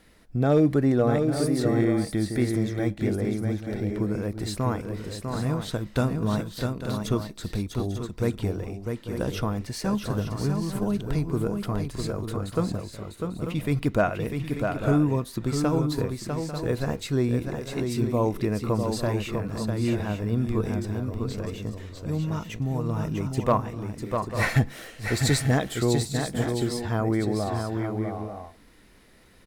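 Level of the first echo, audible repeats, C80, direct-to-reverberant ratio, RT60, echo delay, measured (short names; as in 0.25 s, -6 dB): -5.5 dB, 3, none, none, none, 0.649 s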